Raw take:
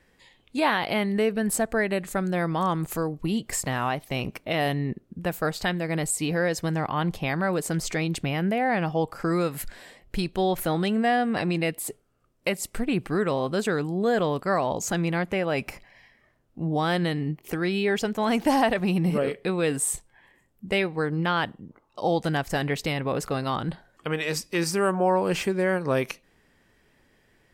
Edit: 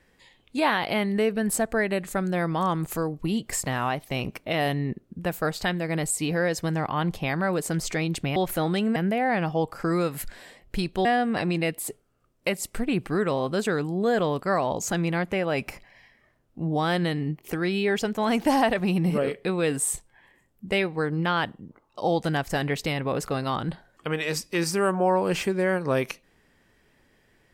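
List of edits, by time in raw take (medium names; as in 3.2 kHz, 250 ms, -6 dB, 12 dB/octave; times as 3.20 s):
10.45–11.05 s: move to 8.36 s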